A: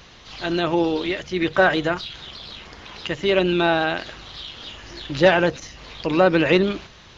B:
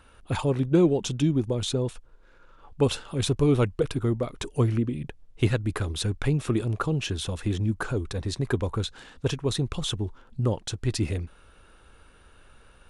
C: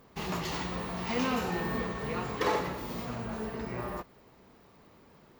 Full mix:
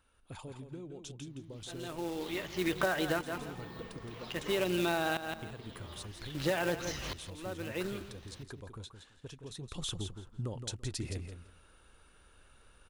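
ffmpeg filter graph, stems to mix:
ffmpeg -i stem1.wav -i stem2.wav -i stem3.wav -filter_complex "[0:a]acrusher=bits=3:mode=log:mix=0:aa=0.000001,aeval=exprs='val(0)*pow(10,-34*if(lt(mod(-0.51*n/s,1),2*abs(-0.51)/1000),1-mod(-0.51*n/s,1)/(2*abs(-0.51)/1000),(mod(-0.51*n/s,1)-2*abs(-0.51)/1000)/(1-2*abs(-0.51)/1000))/20)':channel_layout=same,adelay=1250,volume=2dB,asplit=2[link_01][link_02];[link_02]volume=-13.5dB[link_03];[1:a]highshelf=frequency=4100:gain=7,acompressor=threshold=-25dB:ratio=12,volume=-8.5dB,afade=type=in:start_time=9.54:duration=0.29:silence=0.375837,asplit=2[link_04][link_05];[link_05]volume=-8dB[link_06];[2:a]adelay=2050,volume=-15.5dB[link_07];[link_03][link_06]amix=inputs=2:normalize=0,aecho=0:1:168|336|504:1|0.18|0.0324[link_08];[link_01][link_04][link_07][link_08]amix=inputs=4:normalize=0,acompressor=threshold=-27dB:ratio=16" out.wav

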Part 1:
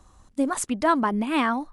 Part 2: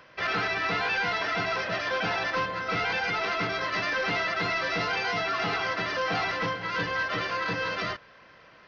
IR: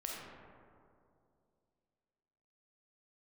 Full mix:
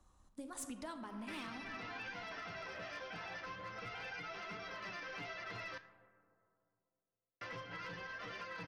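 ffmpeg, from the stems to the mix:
-filter_complex "[0:a]volume=-13dB,asplit=2[link_01][link_02];[link_02]volume=-4.5dB[link_03];[1:a]equalizer=frequency=4200:width=2.2:gain=-6,acompressor=threshold=-34dB:ratio=16,flanger=delay=4:depth=10:regen=36:speed=0.28:shape=triangular,adelay=1100,volume=2dB,asplit=3[link_04][link_05][link_06];[link_04]atrim=end=5.78,asetpts=PTS-STARTPTS,afade=type=out:start_time=5.776:duration=0.004:curve=hsin[link_07];[link_05]atrim=start=5.78:end=7.41,asetpts=PTS-STARTPTS,volume=0[link_08];[link_06]atrim=start=7.41,asetpts=PTS-STARTPTS,afade=type=in:duration=0.004:curve=hsin[link_09];[link_07][link_08][link_09]concat=n=3:v=0:a=1,asplit=2[link_10][link_11];[link_11]volume=-16.5dB[link_12];[2:a]atrim=start_sample=2205[link_13];[link_03][link_12]amix=inputs=2:normalize=0[link_14];[link_14][link_13]afir=irnorm=-1:irlink=0[link_15];[link_01][link_10][link_15]amix=inputs=3:normalize=0,acrossover=split=120|3000[link_16][link_17][link_18];[link_17]acompressor=threshold=-40dB:ratio=10[link_19];[link_16][link_19][link_18]amix=inputs=3:normalize=0,asoftclip=type=hard:threshold=-34dB,flanger=delay=3.5:depth=9.5:regen=-77:speed=1.3:shape=sinusoidal"

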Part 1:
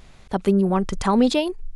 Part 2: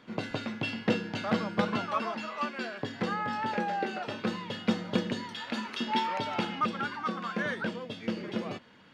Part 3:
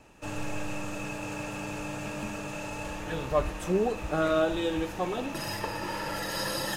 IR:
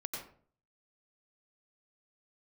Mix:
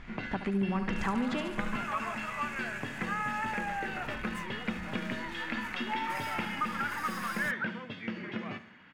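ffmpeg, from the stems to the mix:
-filter_complex "[0:a]volume=-2dB,asplit=2[link_01][link_02];[link_02]volume=-18.5dB[link_03];[1:a]volume=-0.5dB,asplit=2[link_04][link_05];[link_05]volume=-16dB[link_06];[2:a]bandreject=frequency=60:width_type=h:width=6,bandreject=frequency=120:width_type=h:width=6,bandreject=frequency=180:width_type=h:width=6,bandreject=frequency=240:width_type=h:width=6,bandreject=frequency=300:width_type=h:width=6,aeval=exprs='(tanh(70.8*val(0)+0.6)-tanh(0.6))/70.8':channel_layout=same,adelay=750,volume=-4dB[link_07];[link_01][link_04]amix=inputs=2:normalize=0,lowpass=4200,acompressor=threshold=-31dB:ratio=3,volume=0dB[link_08];[link_03][link_06]amix=inputs=2:normalize=0,aecho=0:1:71|142|213|284|355|426|497|568:1|0.52|0.27|0.141|0.0731|0.038|0.0198|0.0103[link_09];[link_07][link_08][link_09]amix=inputs=3:normalize=0,equalizer=frequency=500:width_type=o:width=1:gain=-7,equalizer=frequency=2000:width_type=o:width=1:gain=8,equalizer=frequency=4000:width_type=o:width=1:gain=-6"

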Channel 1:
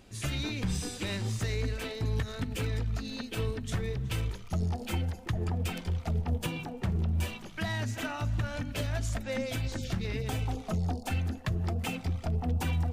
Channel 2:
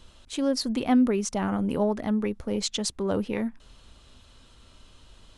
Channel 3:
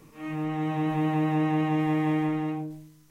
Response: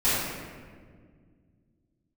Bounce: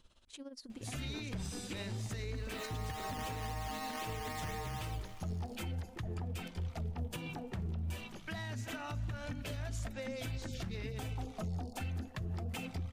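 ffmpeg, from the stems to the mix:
-filter_complex "[0:a]adelay=700,volume=-4dB[link_01];[1:a]acompressor=threshold=-33dB:ratio=5,tremolo=f=17:d=0.76,volume=-10.5dB[link_02];[2:a]highpass=frequency=650:width=0.5412,highpass=frequency=650:width=1.3066,alimiter=level_in=4.5dB:limit=-24dB:level=0:latency=1,volume=-4.5dB,acrusher=samples=9:mix=1:aa=0.000001:lfo=1:lforange=5.4:lforate=3.9,adelay=2350,volume=-1dB,asplit=2[link_03][link_04];[link_04]volume=-21.5dB,aecho=0:1:573:1[link_05];[link_01][link_02][link_03][link_05]amix=inputs=4:normalize=0,alimiter=level_in=7.5dB:limit=-24dB:level=0:latency=1:release=154,volume=-7.5dB"

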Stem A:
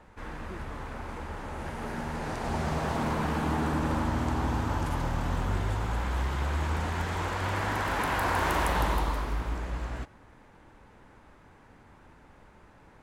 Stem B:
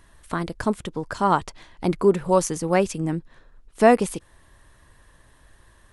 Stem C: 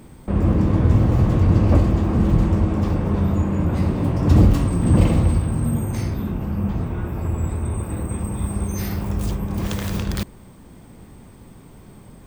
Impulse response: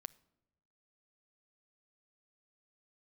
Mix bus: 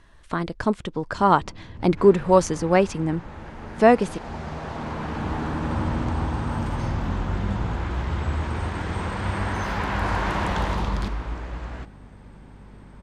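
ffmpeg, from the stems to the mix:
-filter_complex "[0:a]aeval=exprs='val(0)+0.00447*(sin(2*PI*50*n/s)+sin(2*PI*2*50*n/s)/2+sin(2*PI*3*50*n/s)/3+sin(2*PI*4*50*n/s)/4+sin(2*PI*5*50*n/s)/5)':channel_layout=same,adelay=1800,volume=-3dB[link_01];[1:a]volume=0.5dB,asplit=2[link_02][link_03];[2:a]adelay=850,volume=-10dB[link_04];[link_03]apad=whole_len=578493[link_05];[link_04][link_05]sidechaincompress=threshold=-38dB:ratio=4:attack=11:release=1460[link_06];[link_01][link_02][link_06]amix=inputs=3:normalize=0,lowpass=5600,dynaudnorm=framelen=130:gausssize=17:maxgain=4dB"

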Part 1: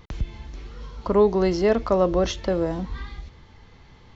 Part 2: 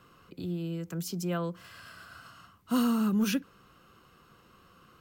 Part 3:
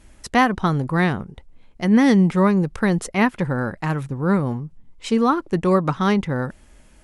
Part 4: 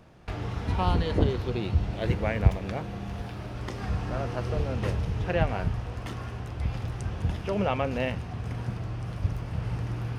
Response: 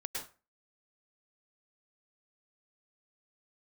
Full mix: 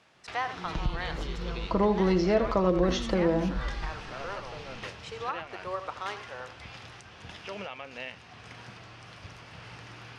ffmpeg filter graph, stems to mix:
-filter_complex "[0:a]aecho=1:1:6.1:0.53,adelay=650,volume=0.5dB,asplit=2[link_01][link_02];[link_02]volume=-10dB[link_03];[1:a]adelay=150,volume=-9.5dB[link_04];[2:a]highpass=frequency=520:width=0.5412,highpass=frequency=520:width=1.3066,volume=-12dB,asplit=2[link_05][link_06];[link_06]volume=-11dB[link_07];[3:a]highpass=frequency=250:poles=1,tiltshelf=frequency=1100:gain=-8,alimiter=limit=-22.5dB:level=0:latency=1:release=351,volume=-3.5dB[link_08];[link_03][link_07]amix=inputs=2:normalize=0,aecho=0:1:81:1[link_09];[link_01][link_04][link_05][link_08][link_09]amix=inputs=5:normalize=0,lowpass=5800,acompressor=threshold=-29dB:ratio=1.5"

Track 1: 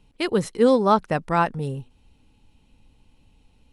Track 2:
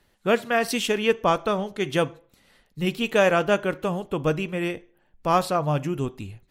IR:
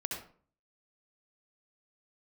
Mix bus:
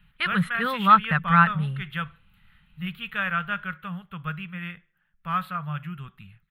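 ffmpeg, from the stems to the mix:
-filter_complex "[0:a]volume=-2.5dB[link_01];[1:a]volume=-11dB[link_02];[link_01][link_02]amix=inputs=2:normalize=0,firequalizer=gain_entry='entry(120,0);entry(170,9);entry(280,-20);entry(940,-3);entry(1300,13);entry(2400,6);entry(3500,4);entry(5600,-23);entry(13000,4)':delay=0.05:min_phase=1"

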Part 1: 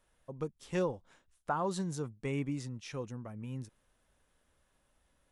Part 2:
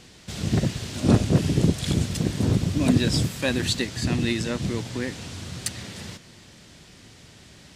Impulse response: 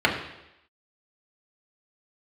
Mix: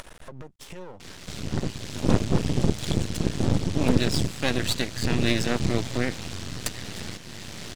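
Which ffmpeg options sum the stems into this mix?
-filter_complex "[0:a]acompressor=threshold=-38dB:ratio=6,alimiter=level_in=14dB:limit=-24dB:level=0:latency=1,volume=-14dB,acompressor=mode=upward:threshold=-49dB:ratio=2.5,volume=0.5dB[link_01];[1:a]dynaudnorm=framelen=490:gausssize=3:maxgain=15dB,adelay=1000,volume=-3dB[link_02];[link_01][link_02]amix=inputs=2:normalize=0,lowpass=9300,acompressor=mode=upward:threshold=-26dB:ratio=2.5,aeval=exprs='max(val(0),0)':channel_layout=same"

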